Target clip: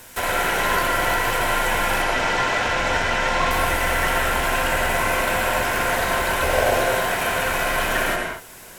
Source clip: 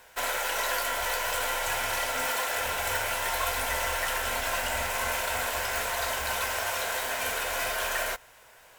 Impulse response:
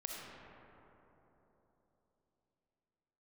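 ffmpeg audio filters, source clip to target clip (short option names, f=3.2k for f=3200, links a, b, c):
-filter_complex "[0:a]asettb=1/sr,asplit=3[a][b][c];[a]atrim=end=2.024[d];[b]atrim=start=2.02:end=3.51,asetpts=PTS-STARTPTS,afade=t=in:d=0.004:c=qsin,afade=t=out:st=1.486:d=0.004:c=qsin,lowpass=f=6.2k:w=0.5412,lowpass=f=6.2k:w=1.3066[e];[c]atrim=start=3.506[f];[d][e]acrossfade=d=0.004:c1=hsin:c2=qsin[g];[g][f]acrossfade=d=0.004:c1=qsin:c2=hsin,asettb=1/sr,asplit=3[h][i][j];[h]atrim=end=6.424[k];[i]atrim=start=6.42:end=6.82,asetpts=PTS-STARTPTS,afade=t=in:d=0.004:c=qsin,afade=t=out:st=0.396:d=0.004:c=qsin,lowshelf=f=780:t=q:w=1.5:g=7.5[l];[j]atrim=start=6.816[m];[k][l]acrossfade=d=0.004:c1=hsin:c2=qsin[n];[n][m]acrossfade=d=0.004:c1=qsin:c2=hsin,acrossover=split=2900[o][p];[p]acompressor=threshold=-49dB:ratio=6[q];[o][q]amix=inputs=2:normalize=0,crystalizer=i=2:c=0,asplit=2[r][s];[s]acrusher=samples=37:mix=1:aa=0.000001:lfo=1:lforange=22.2:lforate=3,volume=-10dB[t];[r][t]amix=inputs=2:normalize=0[u];[1:a]atrim=start_sample=2205,atrim=end_sample=6174,asetrate=24696,aresample=44100[v];[u][v]afir=irnorm=-1:irlink=0,volume=7dB"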